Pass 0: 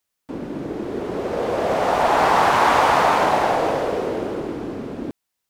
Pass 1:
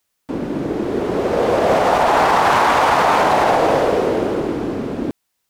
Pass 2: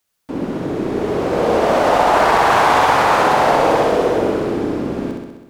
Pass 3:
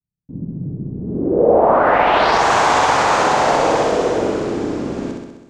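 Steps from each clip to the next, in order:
maximiser +11 dB; gain -4.5 dB
flutter echo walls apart 11.1 m, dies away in 1.1 s; gain -1.5 dB
low-pass sweep 150 Hz -> 7000 Hz, 0.98–2.45; gain -1.5 dB

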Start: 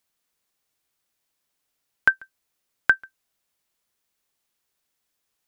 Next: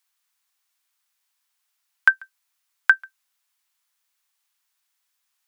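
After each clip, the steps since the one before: HPF 870 Hz 24 dB/oct; gain +2.5 dB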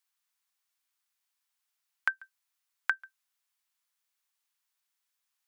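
compressor, threshold -17 dBFS, peak gain reduction 8 dB; gain -7.5 dB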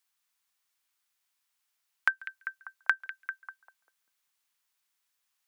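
delay with a stepping band-pass 0.197 s, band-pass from 2600 Hz, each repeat -0.7 oct, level -8 dB; gain +3 dB

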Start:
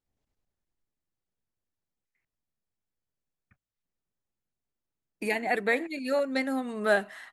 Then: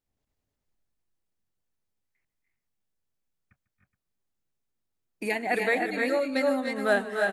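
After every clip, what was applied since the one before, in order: tapped delay 0.147/0.272/0.293/0.314/0.42 s -19/-18.5/-7.5/-4.5/-15.5 dB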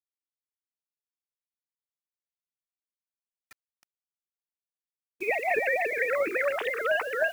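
sine-wave speech; bit-crush 11-bit; spectral compressor 2:1; gain -1.5 dB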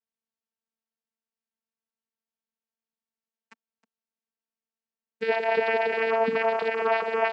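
in parallel at +0.5 dB: limiter -23 dBFS, peak gain reduction 8 dB; on the sum: vocoder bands 8, saw 225 Hz; gain -1 dB

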